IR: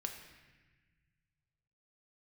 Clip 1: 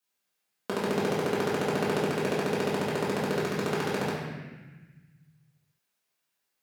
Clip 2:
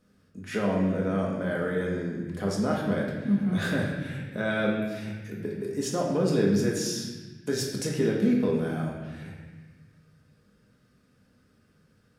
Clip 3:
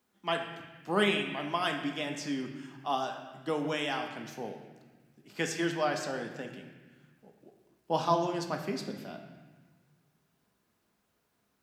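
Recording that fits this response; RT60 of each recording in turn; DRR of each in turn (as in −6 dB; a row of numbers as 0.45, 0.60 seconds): 3; 1.2, 1.2, 1.3 seconds; −9.0, −4.0, 2.5 decibels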